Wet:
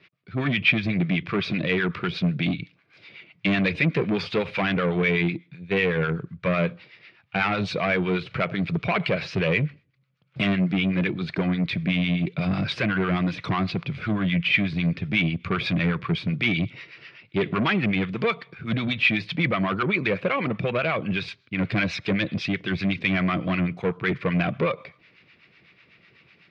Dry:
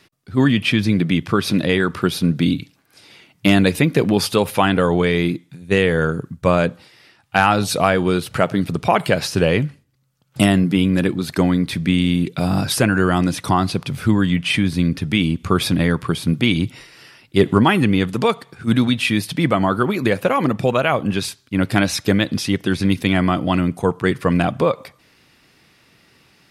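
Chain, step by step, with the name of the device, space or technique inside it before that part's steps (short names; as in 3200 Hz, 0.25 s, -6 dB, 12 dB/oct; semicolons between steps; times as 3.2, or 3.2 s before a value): guitar amplifier with harmonic tremolo (harmonic tremolo 8 Hz, depth 70%, crossover 800 Hz; soft clip -17 dBFS, distortion -10 dB; speaker cabinet 87–4000 Hz, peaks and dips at 170 Hz +3 dB, 260 Hz -6 dB, 840 Hz -7 dB, 2300 Hz +9 dB)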